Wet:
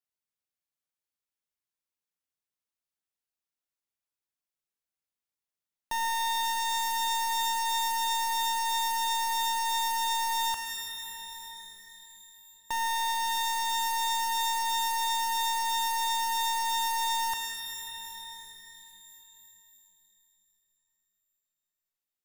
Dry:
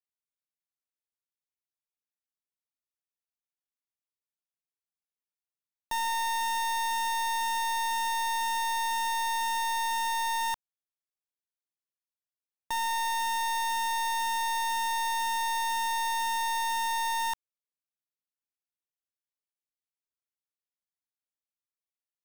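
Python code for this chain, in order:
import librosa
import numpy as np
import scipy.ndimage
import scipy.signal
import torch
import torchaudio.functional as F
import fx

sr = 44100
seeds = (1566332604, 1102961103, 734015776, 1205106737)

y = fx.rev_shimmer(x, sr, seeds[0], rt60_s=3.2, semitones=12, shimmer_db=-2, drr_db=6.0)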